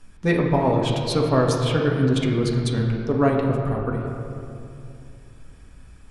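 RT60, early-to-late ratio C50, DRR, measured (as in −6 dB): 2.7 s, 2.0 dB, −2.0 dB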